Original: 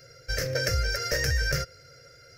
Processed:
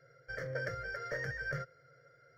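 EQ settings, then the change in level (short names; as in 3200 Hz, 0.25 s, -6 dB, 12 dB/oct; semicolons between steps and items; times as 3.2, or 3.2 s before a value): polynomial smoothing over 41 samples; resonant low shelf 100 Hz -11.5 dB, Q 3; bell 180 Hz -11 dB 2.4 oct; -5.5 dB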